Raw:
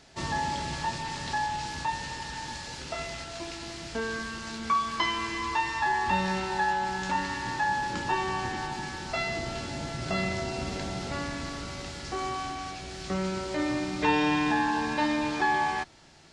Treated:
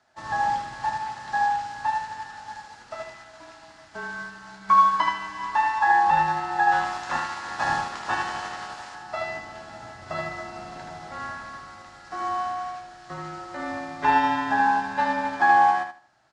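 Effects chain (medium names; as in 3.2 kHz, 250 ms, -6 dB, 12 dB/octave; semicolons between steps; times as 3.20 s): 6.71–8.94 s: spectral peaks clipped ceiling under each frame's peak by 19 dB; high-pass 100 Hz; high-order bell 1.1 kHz +11 dB; frequency shift -29 Hz; feedback delay 77 ms, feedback 33%, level -5 dB; upward expansion 1.5:1, over -37 dBFS; trim -2.5 dB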